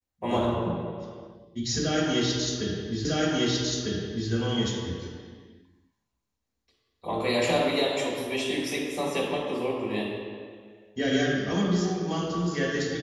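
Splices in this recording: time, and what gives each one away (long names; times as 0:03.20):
0:03.05: the same again, the last 1.25 s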